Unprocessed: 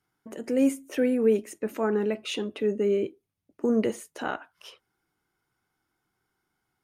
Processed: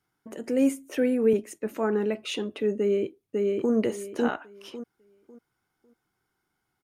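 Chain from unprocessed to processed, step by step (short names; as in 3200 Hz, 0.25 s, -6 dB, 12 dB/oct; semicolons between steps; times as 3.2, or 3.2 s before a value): 1.33–1.77 three-band expander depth 40%; 2.78–3.73 echo throw 0.55 s, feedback 25%, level -1.5 dB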